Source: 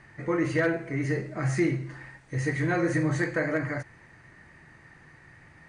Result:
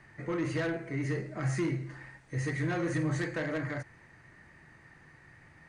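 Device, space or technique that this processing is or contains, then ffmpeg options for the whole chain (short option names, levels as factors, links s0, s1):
one-band saturation: -filter_complex "[0:a]acrossover=split=230|4400[s0][s1][s2];[s1]asoftclip=type=tanh:threshold=0.0531[s3];[s0][s3][s2]amix=inputs=3:normalize=0,volume=0.668"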